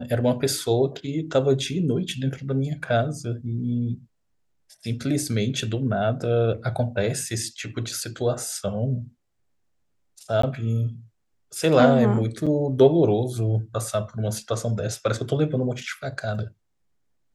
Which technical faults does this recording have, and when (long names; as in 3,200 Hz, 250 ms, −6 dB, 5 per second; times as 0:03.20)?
0:10.42–0:10.43: drop-out 14 ms
0:12.46–0:12.47: drop-out 6.3 ms